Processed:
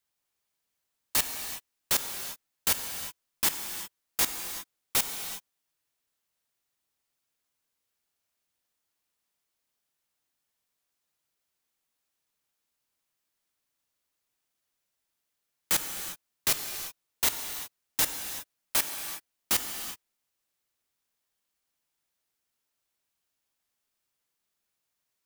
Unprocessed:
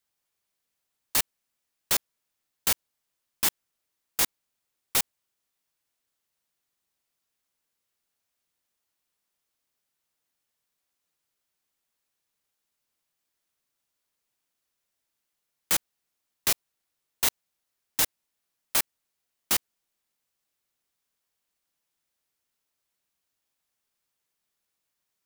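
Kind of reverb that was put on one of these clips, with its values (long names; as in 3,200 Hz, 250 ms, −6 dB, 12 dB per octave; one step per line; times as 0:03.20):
reverb whose tail is shaped and stops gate 400 ms flat, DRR 5.5 dB
level −1.5 dB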